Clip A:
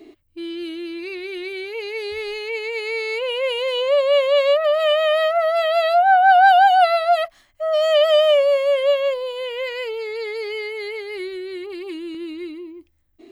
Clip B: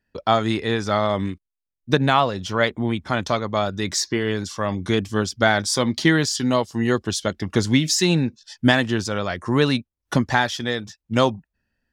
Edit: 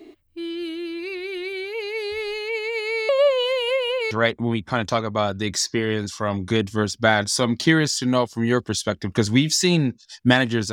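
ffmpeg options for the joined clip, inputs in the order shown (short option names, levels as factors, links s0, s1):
-filter_complex "[0:a]apad=whole_dur=10.72,atrim=end=10.72,asplit=2[s0][s1];[s0]atrim=end=3.092[s2];[s1]atrim=start=3.088:end=4.112,asetpts=PTS-STARTPTS,areverse[s3];[1:a]atrim=start=2.488:end=9.1[s4];[s2][s3]acrossfade=d=0.004:c1=hsin:c2=hsin[s5];[s5][s4]acrossfade=d=0.004:c1=hsin:c2=hsin"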